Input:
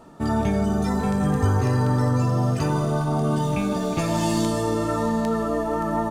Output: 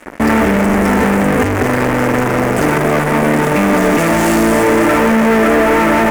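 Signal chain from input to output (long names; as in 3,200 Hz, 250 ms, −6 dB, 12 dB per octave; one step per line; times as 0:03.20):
fuzz pedal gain 39 dB, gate −43 dBFS
graphic EQ with 10 bands 125 Hz −9 dB, 250 Hz +6 dB, 500 Hz +4 dB, 2,000 Hz +8 dB, 4,000 Hz −10 dB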